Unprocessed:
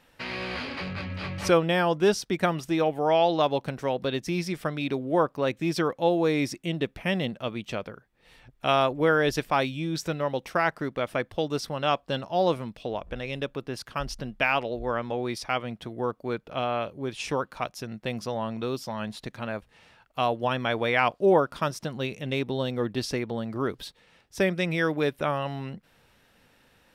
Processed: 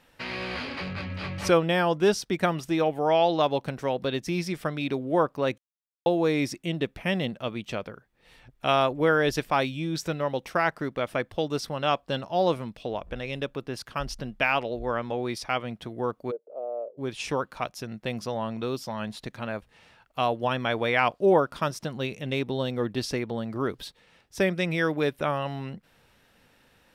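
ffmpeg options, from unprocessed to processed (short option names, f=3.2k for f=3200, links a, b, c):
-filter_complex "[0:a]asplit=3[a][b][c];[a]afade=t=out:st=16.3:d=0.02[d];[b]asuperpass=centerf=510:order=4:qfactor=2.4,afade=t=in:st=16.3:d=0.02,afade=t=out:st=16.97:d=0.02[e];[c]afade=t=in:st=16.97:d=0.02[f];[d][e][f]amix=inputs=3:normalize=0,asplit=3[g][h][i];[g]atrim=end=5.58,asetpts=PTS-STARTPTS,afade=t=out:st=5.576:d=0.004:c=hsin[j];[h]atrim=start=5.58:end=6.06,asetpts=PTS-STARTPTS,volume=0[k];[i]atrim=start=6.06,asetpts=PTS-STARTPTS,afade=t=in:d=0.004:c=hsin[l];[j][k][l]concat=n=3:v=0:a=1"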